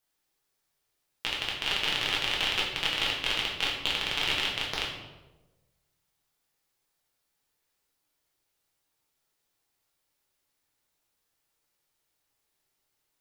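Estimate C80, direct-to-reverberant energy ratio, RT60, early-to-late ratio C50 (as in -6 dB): 6.0 dB, -4.5 dB, 1.2 s, 3.5 dB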